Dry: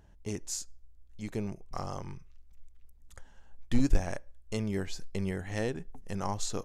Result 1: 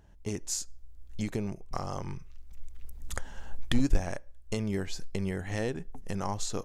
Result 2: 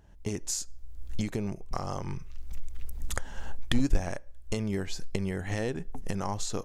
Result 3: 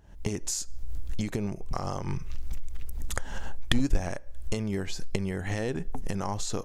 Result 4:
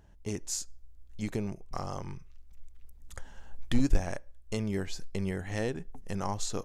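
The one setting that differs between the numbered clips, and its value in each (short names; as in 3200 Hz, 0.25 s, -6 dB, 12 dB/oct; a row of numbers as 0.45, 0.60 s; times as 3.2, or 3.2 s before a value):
recorder AGC, rising by: 13, 32, 78, 5 dB/s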